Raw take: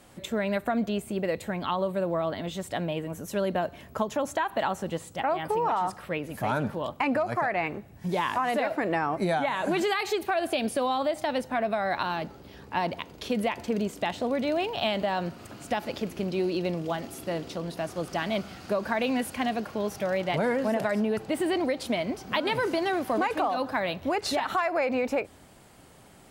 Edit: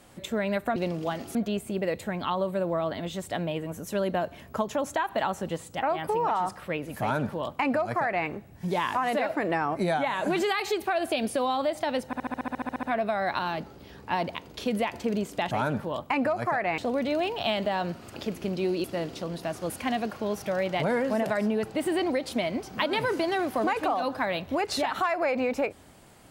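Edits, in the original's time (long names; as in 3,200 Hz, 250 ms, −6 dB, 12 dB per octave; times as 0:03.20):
0:06.41–0:07.68: duplicate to 0:14.15
0:11.47: stutter 0.07 s, 12 plays
0:15.53–0:15.91: remove
0:16.59–0:17.18: move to 0:00.76
0:18.04–0:19.24: remove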